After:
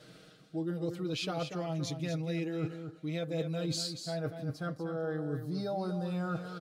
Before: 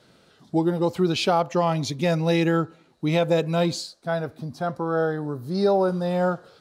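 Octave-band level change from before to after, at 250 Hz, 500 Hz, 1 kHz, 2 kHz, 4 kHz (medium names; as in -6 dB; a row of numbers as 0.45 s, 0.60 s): -10.5 dB, -14.0 dB, -16.5 dB, -13.0 dB, -8.5 dB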